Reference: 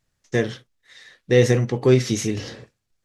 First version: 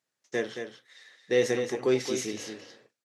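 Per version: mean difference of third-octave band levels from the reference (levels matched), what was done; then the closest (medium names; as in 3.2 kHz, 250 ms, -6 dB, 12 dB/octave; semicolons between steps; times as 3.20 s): 5.0 dB: high-pass 310 Hz 12 dB/octave; delay 223 ms -7.5 dB; trim -6.5 dB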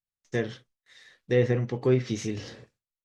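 1.5 dB: gate with hold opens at -50 dBFS; low-pass that closes with the level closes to 2.5 kHz, closed at -12.5 dBFS; trim -7 dB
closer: second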